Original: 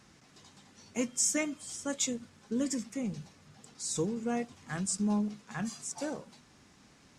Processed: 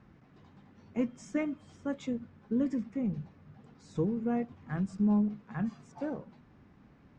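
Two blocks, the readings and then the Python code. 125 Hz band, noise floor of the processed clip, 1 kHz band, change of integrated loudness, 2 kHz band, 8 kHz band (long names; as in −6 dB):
+4.0 dB, −60 dBFS, −1.5 dB, 0.0 dB, −5.5 dB, below −25 dB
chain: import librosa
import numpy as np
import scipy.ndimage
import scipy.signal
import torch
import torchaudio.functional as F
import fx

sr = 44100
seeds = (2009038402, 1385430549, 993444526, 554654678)

y = scipy.signal.sosfilt(scipy.signal.butter(2, 1900.0, 'lowpass', fs=sr, output='sos'), x)
y = fx.low_shelf(y, sr, hz=320.0, db=8.5)
y = y * 10.0 ** (-2.5 / 20.0)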